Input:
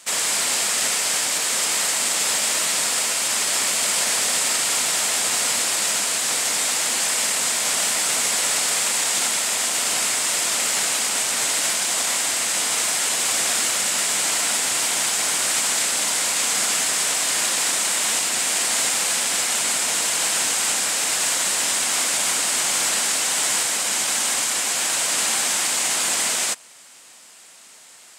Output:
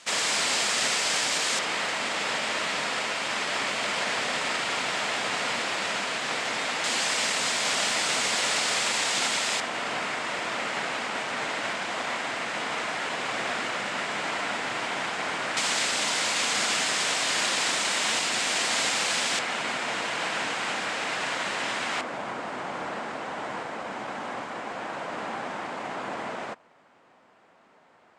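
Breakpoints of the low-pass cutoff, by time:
5.1 kHz
from 1.59 s 2.8 kHz
from 6.84 s 4.6 kHz
from 9.60 s 2.1 kHz
from 15.57 s 4.6 kHz
from 19.39 s 2.4 kHz
from 22.01 s 1.1 kHz

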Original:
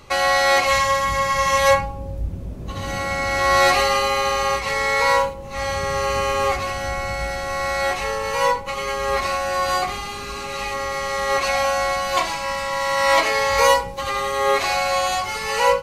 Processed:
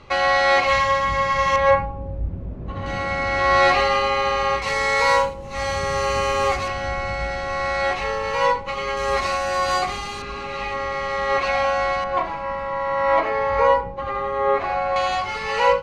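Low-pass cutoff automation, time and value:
3.8 kHz
from 1.56 s 1.9 kHz
from 2.86 s 3.6 kHz
from 4.62 s 8.2 kHz
from 6.68 s 4.2 kHz
from 8.97 s 7.8 kHz
from 10.22 s 3.2 kHz
from 12.04 s 1.4 kHz
from 14.96 s 3.6 kHz

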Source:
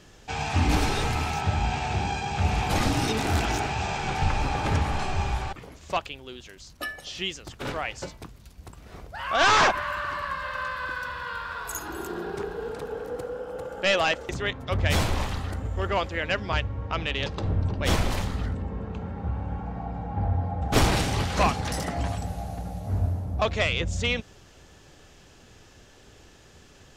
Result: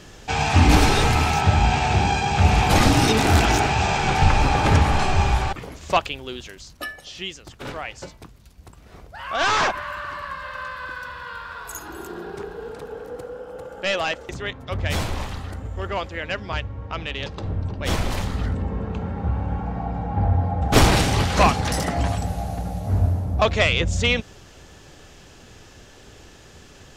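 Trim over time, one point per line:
6.39 s +8 dB
7.03 s -1 dB
17.79 s -1 dB
18.62 s +6 dB

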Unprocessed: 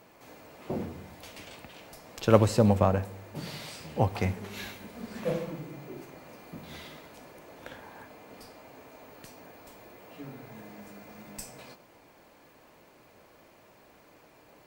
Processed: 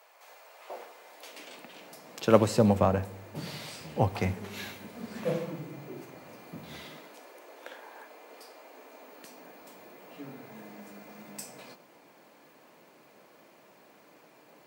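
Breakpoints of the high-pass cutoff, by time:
high-pass 24 dB/octave
0.96 s 580 Hz
1.59 s 200 Hz
3.04 s 87 Hz
6.80 s 87 Hz
7.24 s 340 Hz
8.58 s 340 Hz
9.78 s 150 Hz

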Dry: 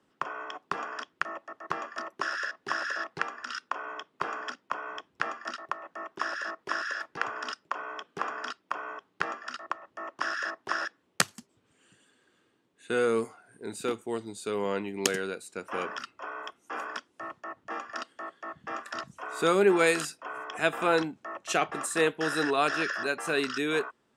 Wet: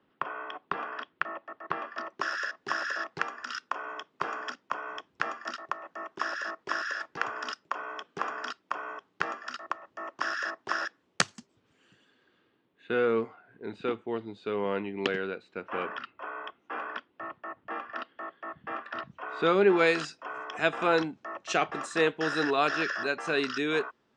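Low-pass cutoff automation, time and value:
low-pass 24 dB/octave
1.82 s 3.8 kHz
2.31 s 7.3 kHz
11.33 s 7.3 kHz
13.02 s 3.4 kHz
19.11 s 3.4 kHz
20.21 s 6.2 kHz

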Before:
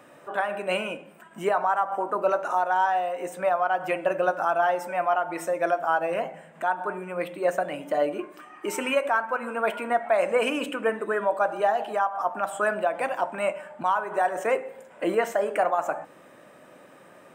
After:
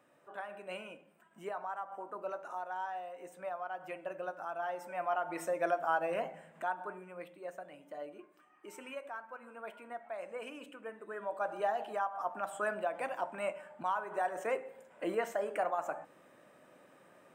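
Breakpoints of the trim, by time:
4.51 s -16.5 dB
5.34 s -7.5 dB
6.48 s -7.5 dB
7.47 s -20 dB
10.95 s -20 dB
11.53 s -10 dB

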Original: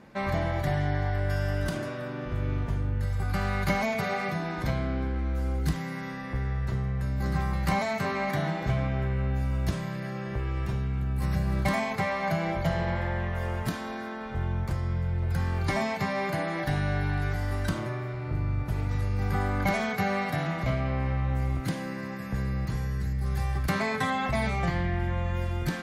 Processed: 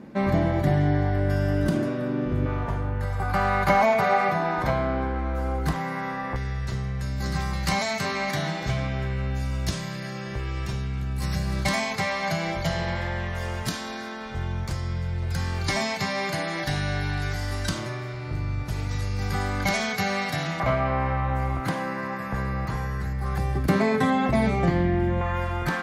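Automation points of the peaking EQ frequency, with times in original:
peaking EQ +12 dB 2 oct
260 Hz
from 2.46 s 880 Hz
from 6.36 s 5.6 kHz
from 20.60 s 1 kHz
from 23.38 s 310 Hz
from 25.21 s 1.1 kHz

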